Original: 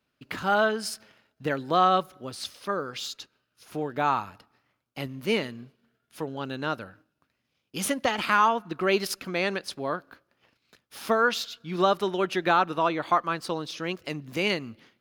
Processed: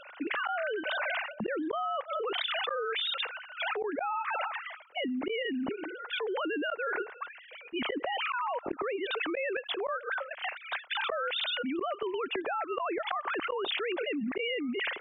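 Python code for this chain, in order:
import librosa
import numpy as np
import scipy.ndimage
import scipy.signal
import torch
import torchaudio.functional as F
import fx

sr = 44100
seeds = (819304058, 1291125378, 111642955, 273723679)

y = fx.sine_speech(x, sr)
y = fx.gate_flip(y, sr, shuts_db=-23.0, range_db=-33)
y = fx.env_flatten(y, sr, amount_pct=100)
y = F.gain(torch.from_numpy(y), -4.0).numpy()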